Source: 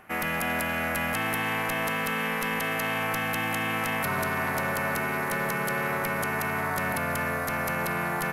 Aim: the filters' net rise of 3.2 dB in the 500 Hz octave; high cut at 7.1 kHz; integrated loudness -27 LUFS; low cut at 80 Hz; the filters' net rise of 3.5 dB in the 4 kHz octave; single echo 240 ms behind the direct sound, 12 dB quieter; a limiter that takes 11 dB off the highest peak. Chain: high-pass 80 Hz; low-pass 7.1 kHz; peaking EQ 500 Hz +4 dB; peaking EQ 4 kHz +5.5 dB; peak limiter -27.5 dBFS; delay 240 ms -12 dB; trim +7 dB

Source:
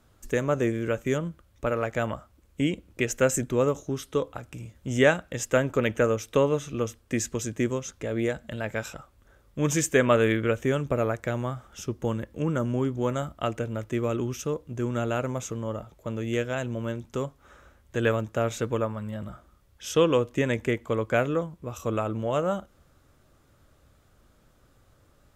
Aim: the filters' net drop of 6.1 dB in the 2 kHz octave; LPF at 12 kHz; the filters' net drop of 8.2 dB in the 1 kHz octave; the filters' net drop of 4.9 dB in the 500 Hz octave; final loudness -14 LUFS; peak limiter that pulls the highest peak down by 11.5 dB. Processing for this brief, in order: low-pass 12 kHz; peaking EQ 500 Hz -3.5 dB; peaking EQ 1 kHz -9 dB; peaking EQ 2 kHz -4.5 dB; trim +20.5 dB; peak limiter -2.5 dBFS

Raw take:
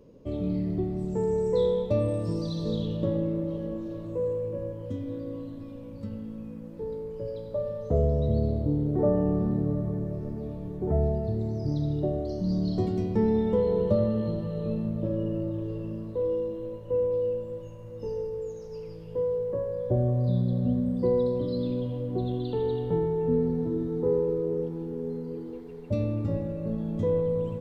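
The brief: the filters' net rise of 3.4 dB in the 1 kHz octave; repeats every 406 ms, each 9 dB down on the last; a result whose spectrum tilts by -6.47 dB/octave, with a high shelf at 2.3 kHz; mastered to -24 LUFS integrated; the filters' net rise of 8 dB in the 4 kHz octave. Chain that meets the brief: peaking EQ 1 kHz +3.5 dB; treble shelf 2.3 kHz +4 dB; peaking EQ 4 kHz +5.5 dB; feedback delay 406 ms, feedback 35%, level -9 dB; trim +3.5 dB

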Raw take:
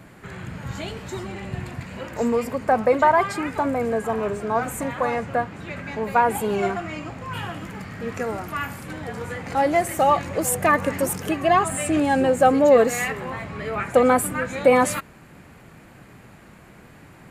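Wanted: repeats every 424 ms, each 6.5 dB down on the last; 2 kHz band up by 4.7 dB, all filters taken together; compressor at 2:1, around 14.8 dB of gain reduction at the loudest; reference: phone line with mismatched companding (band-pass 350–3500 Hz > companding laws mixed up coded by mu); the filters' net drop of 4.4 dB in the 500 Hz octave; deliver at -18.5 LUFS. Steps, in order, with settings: peaking EQ 500 Hz -4.5 dB; peaking EQ 2 kHz +6.5 dB; compression 2:1, threshold -41 dBFS; band-pass 350–3500 Hz; feedback delay 424 ms, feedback 47%, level -6.5 dB; companding laws mixed up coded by mu; trim +15.5 dB

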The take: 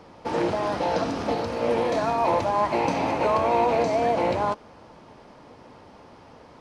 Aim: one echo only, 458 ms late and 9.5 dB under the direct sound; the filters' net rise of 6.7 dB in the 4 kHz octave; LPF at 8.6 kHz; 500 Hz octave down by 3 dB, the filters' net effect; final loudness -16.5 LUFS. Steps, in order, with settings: low-pass 8.6 kHz; peaking EQ 500 Hz -4 dB; peaking EQ 4 kHz +8.5 dB; delay 458 ms -9.5 dB; trim +8.5 dB

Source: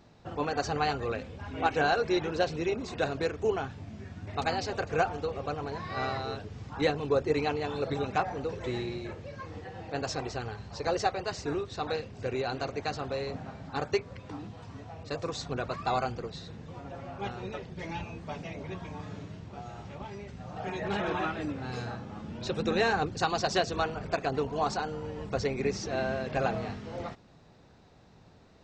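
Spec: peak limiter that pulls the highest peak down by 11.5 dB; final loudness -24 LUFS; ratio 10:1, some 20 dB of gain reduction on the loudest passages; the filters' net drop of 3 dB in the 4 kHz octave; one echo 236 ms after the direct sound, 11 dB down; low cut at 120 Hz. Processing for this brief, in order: high-pass 120 Hz; peaking EQ 4 kHz -3.5 dB; compression 10:1, threshold -43 dBFS; peak limiter -40 dBFS; delay 236 ms -11 dB; trim +25.5 dB

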